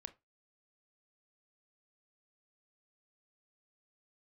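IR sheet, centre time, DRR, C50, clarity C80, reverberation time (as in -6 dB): 4 ms, 10.5 dB, 19.5 dB, 27.5 dB, 0.20 s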